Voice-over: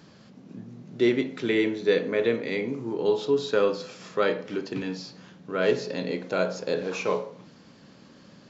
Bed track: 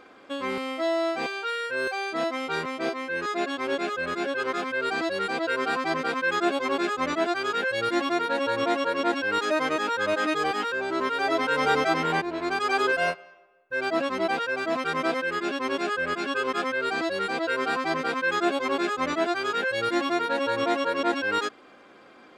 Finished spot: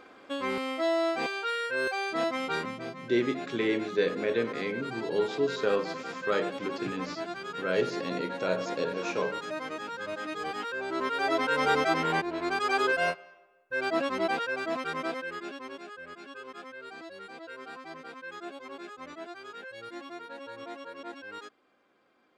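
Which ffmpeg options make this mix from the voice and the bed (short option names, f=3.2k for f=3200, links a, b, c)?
-filter_complex "[0:a]adelay=2100,volume=-4.5dB[a];[1:a]volume=7dB,afade=t=out:st=2.5:d=0.35:silence=0.334965,afade=t=in:st=10.28:d=0.99:silence=0.375837,afade=t=out:st=14.26:d=1.59:silence=0.188365[b];[a][b]amix=inputs=2:normalize=0"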